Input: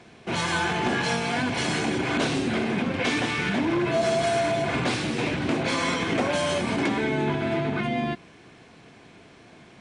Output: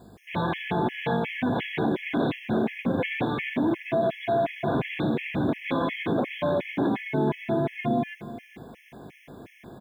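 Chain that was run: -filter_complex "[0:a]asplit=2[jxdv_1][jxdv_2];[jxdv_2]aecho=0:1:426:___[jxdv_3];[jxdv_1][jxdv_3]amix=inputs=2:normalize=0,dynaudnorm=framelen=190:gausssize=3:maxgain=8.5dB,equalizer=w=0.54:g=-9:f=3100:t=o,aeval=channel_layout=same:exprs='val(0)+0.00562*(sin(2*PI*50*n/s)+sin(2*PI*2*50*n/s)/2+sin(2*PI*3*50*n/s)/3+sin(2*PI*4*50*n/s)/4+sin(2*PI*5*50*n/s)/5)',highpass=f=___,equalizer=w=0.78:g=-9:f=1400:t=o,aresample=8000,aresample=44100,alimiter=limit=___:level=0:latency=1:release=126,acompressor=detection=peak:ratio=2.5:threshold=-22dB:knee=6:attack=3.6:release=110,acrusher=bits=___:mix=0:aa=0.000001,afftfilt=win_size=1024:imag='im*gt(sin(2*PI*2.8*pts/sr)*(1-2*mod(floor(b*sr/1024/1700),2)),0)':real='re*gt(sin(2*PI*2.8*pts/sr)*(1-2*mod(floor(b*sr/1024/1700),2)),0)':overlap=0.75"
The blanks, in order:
0.112, 110, -9.5dB, 9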